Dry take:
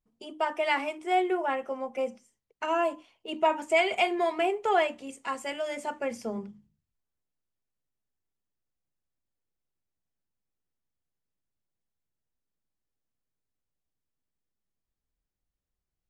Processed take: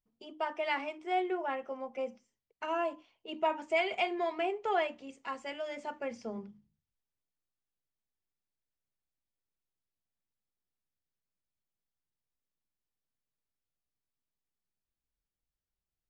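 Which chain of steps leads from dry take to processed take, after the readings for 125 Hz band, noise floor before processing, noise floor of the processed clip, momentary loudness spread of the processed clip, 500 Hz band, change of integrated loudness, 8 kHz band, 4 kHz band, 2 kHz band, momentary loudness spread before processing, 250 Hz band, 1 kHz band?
no reading, under -85 dBFS, under -85 dBFS, 12 LU, -6.0 dB, -6.0 dB, under -10 dB, -6.0 dB, -6.0 dB, 12 LU, -6.0 dB, -6.0 dB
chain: low-pass 6.1 kHz 24 dB/octave; trim -6 dB

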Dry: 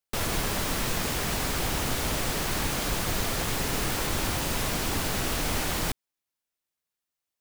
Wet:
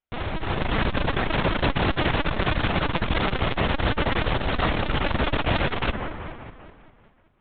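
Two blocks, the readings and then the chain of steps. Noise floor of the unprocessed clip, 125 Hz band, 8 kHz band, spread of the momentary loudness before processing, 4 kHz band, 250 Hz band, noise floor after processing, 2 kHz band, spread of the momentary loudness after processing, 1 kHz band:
under -85 dBFS, +6.5 dB, under -40 dB, 0 LU, +1.0 dB, +5.5 dB, -59 dBFS, +5.5 dB, 8 LU, +6.0 dB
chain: treble shelf 2.8 kHz -7 dB; in parallel at -1.5 dB: peak limiter -25.5 dBFS, peak gain reduction 8.5 dB; on the sum: level rider gain up to 9 dB; integer overflow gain 9.5 dB; on a send: feedback echo behind a low-pass 194 ms, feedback 55%, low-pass 1.9 kHz, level -9 dB; on the sum: LPC vocoder at 8 kHz pitch kept; transformer saturation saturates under 160 Hz; trim -2.5 dB

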